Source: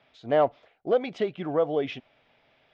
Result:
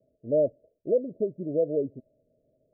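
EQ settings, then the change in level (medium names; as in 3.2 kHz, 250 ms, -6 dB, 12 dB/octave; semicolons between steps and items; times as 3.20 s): Chebyshev low-pass 650 Hz, order 10; 0.0 dB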